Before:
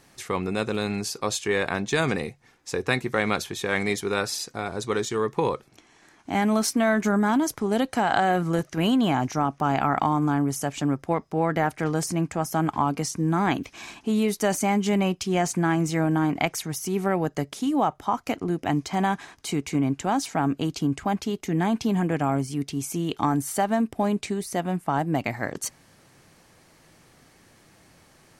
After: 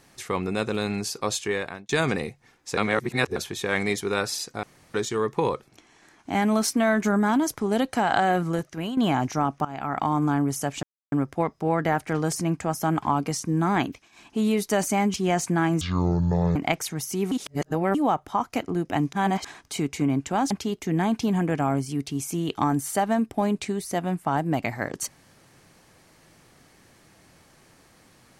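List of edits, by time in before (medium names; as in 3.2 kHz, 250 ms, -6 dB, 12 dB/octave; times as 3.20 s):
1.40–1.89 s: fade out
2.77–3.36 s: reverse
4.63–4.94 s: room tone
8.37–8.97 s: fade out, to -11.5 dB
9.65–10.18 s: fade in, from -19 dB
10.83 s: insert silence 0.29 s
13.53–14.10 s: dip -20 dB, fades 0.27 s
14.85–15.21 s: delete
15.88–16.29 s: speed 55%
17.05–17.68 s: reverse
18.86–19.18 s: reverse
20.24–21.12 s: delete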